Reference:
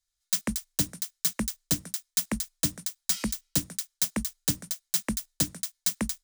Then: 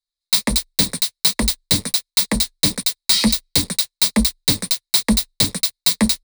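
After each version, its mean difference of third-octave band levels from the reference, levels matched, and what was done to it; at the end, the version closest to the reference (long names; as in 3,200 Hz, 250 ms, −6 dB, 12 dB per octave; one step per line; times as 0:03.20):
5.0 dB: leveller curve on the samples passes 5
EQ curve with evenly spaced ripples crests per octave 0.93, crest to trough 7 dB
flanger 1.4 Hz, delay 2.3 ms, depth 7.8 ms, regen −33%
parametric band 3,900 Hz +12 dB 0.52 octaves
level +1.5 dB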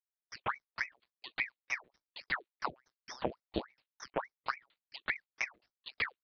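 17.5 dB: noise reduction from a noise print of the clip's start 21 dB
high-pass filter 56 Hz 24 dB per octave
one-pitch LPC vocoder at 8 kHz 130 Hz
ring modulator whose carrier an LFO sweeps 1,300 Hz, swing 75%, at 3.5 Hz
level −1.5 dB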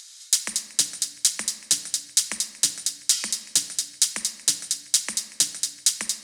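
8.5 dB: meter weighting curve ITU-R 468
upward compression, threshold −21 dBFS
on a send: delay with a high-pass on its return 234 ms, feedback 71%, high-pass 1,700 Hz, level −16.5 dB
on the sum: rectangular room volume 1,400 cubic metres, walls mixed, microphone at 0.67 metres
level −2 dB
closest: first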